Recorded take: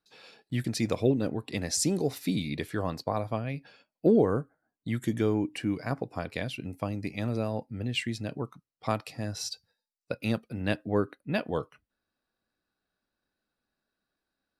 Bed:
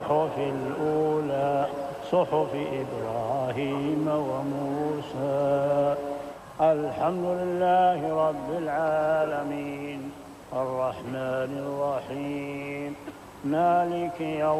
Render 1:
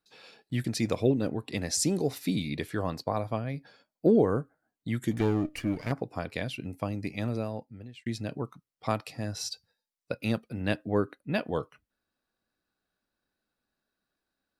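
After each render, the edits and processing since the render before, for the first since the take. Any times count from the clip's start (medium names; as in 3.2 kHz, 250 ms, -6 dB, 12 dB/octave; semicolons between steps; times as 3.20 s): 3.44–4.09 s: peaking EQ 2.7 kHz -13 dB 0.26 oct; 5.11–5.92 s: comb filter that takes the minimum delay 0.43 ms; 7.24–8.06 s: fade out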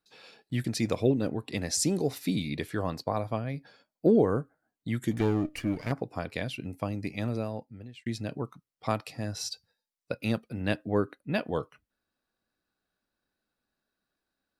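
no audible change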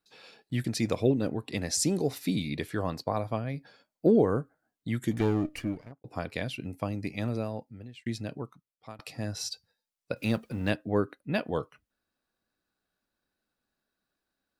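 5.51–6.04 s: studio fade out; 8.10–8.99 s: fade out, to -22 dB; 10.16–10.70 s: companding laws mixed up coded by mu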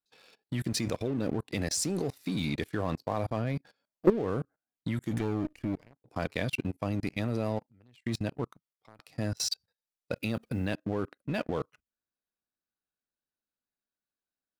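level held to a coarse grid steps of 19 dB; waveshaping leveller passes 2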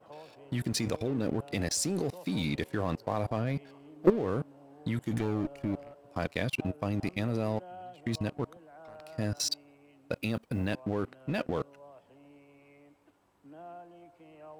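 add bed -25 dB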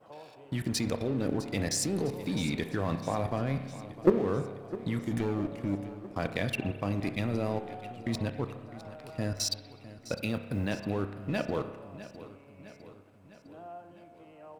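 feedback delay 656 ms, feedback 58%, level -16 dB; spring tank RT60 1.3 s, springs 30 ms, chirp 35 ms, DRR 9 dB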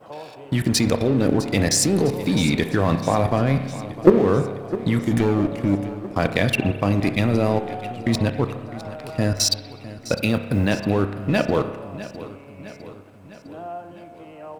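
trim +11.5 dB; peak limiter -2 dBFS, peak gain reduction 2 dB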